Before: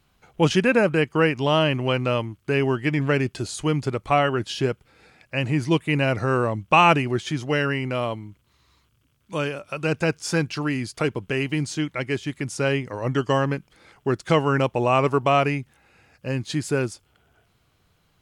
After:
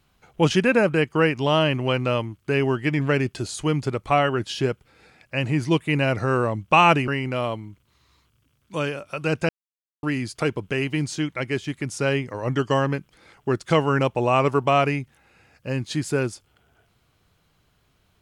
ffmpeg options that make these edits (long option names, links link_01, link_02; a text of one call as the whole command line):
ffmpeg -i in.wav -filter_complex "[0:a]asplit=4[link_01][link_02][link_03][link_04];[link_01]atrim=end=7.082[link_05];[link_02]atrim=start=7.668:end=10.08,asetpts=PTS-STARTPTS,afade=type=out:start_time=2.408:duration=0.004:curve=hsin[link_06];[link_03]atrim=start=10.08:end=10.62,asetpts=PTS-STARTPTS,volume=0[link_07];[link_04]atrim=start=10.62,asetpts=PTS-STARTPTS,afade=type=in:duration=0.004:curve=hsin[link_08];[link_06][link_07][link_08]concat=n=3:v=0:a=1[link_09];[link_05][link_09]acrossfade=duration=0.004:curve1=hsin:curve2=hsin" out.wav